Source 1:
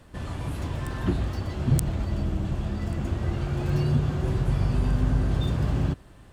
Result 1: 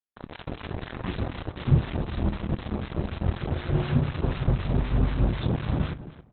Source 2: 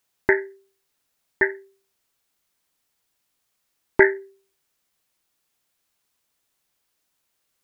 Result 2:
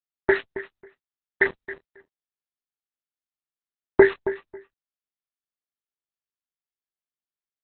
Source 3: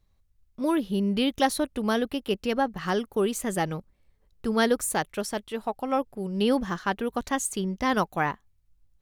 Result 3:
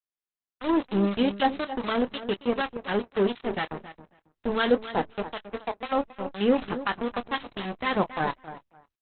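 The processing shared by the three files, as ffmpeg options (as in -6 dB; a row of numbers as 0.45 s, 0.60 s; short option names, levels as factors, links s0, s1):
-filter_complex "[0:a]bandreject=f=55.69:t=h:w=4,bandreject=f=111.38:t=h:w=4,bandreject=f=167.07:t=h:w=4,bandreject=f=222.76:t=h:w=4,bandreject=f=278.45:t=h:w=4,aeval=exprs='val(0)*gte(abs(val(0)),0.0501)':c=same,acrossover=split=1100[s0][s1];[s0]aeval=exprs='val(0)*(1-0.7/2+0.7/2*cos(2*PI*4*n/s))':c=same[s2];[s1]aeval=exprs='val(0)*(1-0.7/2-0.7/2*cos(2*PI*4*n/s))':c=same[s3];[s2][s3]amix=inputs=2:normalize=0,asplit=2[s4][s5];[s5]adelay=25,volume=0.251[s6];[s4][s6]amix=inputs=2:normalize=0,asplit=2[s7][s8];[s8]adelay=272,lowpass=f=2600:p=1,volume=0.237,asplit=2[s9][s10];[s10]adelay=272,lowpass=f=2600:p=1,volume=0.17[s11];[s7][s9][s11]amix=inputs=3:normalize=0,volume=1.5" -ar 48000 -c:a libopus -b:a 8k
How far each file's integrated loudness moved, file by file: -1.0 LU, -0.5 LU, -0.5 LU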